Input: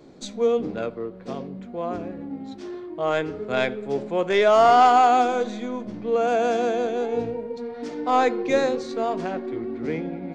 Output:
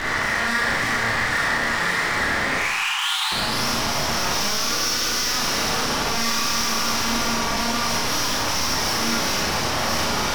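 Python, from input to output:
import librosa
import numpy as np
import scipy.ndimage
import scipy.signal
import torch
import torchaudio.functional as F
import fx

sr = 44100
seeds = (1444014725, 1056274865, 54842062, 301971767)

y = fx.bin_compress(x, sr, power=0.4)
y = fx.comb(y, sr, ms=1.9, depth=0.41, at=(7.79, 8.67))
y = np.abs(y)
y = fx.tube_stage(y, sr, drive_db=19.0, bias=0.55)
y = fx.filter_sweep_lowpass(y, sr, from_hz=1900.0, to_hz=5600.0, start_s=2.4, end_s=3.65, q=6.4)
y = np.clip(y, -10.0 ** (-34.5 / 20.0), 10.0 ** (-34.5 / 20.0))
y = fx.brickwall_highpass(y, sr, low_hz=750.0, at=(2.58, 3.32))
y = fx.rev_schroeder(y, sr, rt60_s=0.67, comb_ms=27, drr_db=-4.0)
y = y * 10.0 ** (8.5 / 20.0)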